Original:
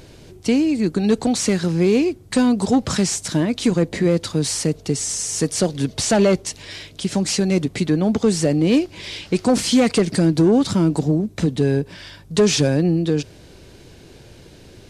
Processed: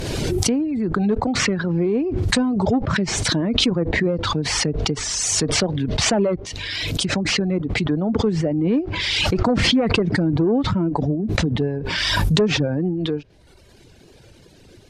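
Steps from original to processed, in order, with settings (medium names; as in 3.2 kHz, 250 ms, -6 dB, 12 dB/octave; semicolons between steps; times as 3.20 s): vibrato 2.5 Hz 48 cents; reverb removal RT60 1 s; low-pass that closes with the level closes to 1.4 kHz, closed at -17 dBFS; swell ahead of each attack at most 20 dB/s; trim -3 dB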